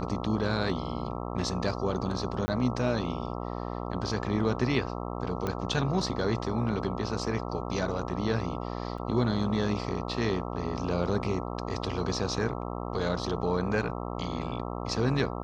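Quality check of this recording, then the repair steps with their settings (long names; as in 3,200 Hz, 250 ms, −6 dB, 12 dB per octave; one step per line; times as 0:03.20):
mains buzz 60 Hz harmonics 22 −35 dBFS
0:02.46–0:02.48: drop-out 20 ms
0:05.47: click −18 dBFS
0:08.98: drop-out 4.1 ms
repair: click removal
hum removal 60 Hz, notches 22
repair the gap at 0:02.46, 20 ms
repair the gap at 0:08.98, 4.1 ms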